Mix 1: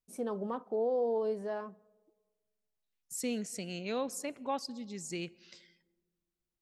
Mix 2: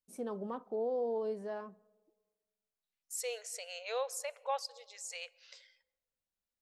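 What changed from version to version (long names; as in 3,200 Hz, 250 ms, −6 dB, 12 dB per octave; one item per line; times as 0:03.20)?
first voice −3.5 dB
second voice: add linear-phase brick-wall high-pass 440 Hz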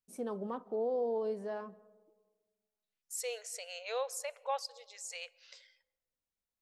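first voice: send +8.5 dB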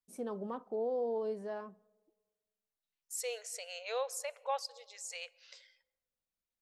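first voice: send −10.5 dB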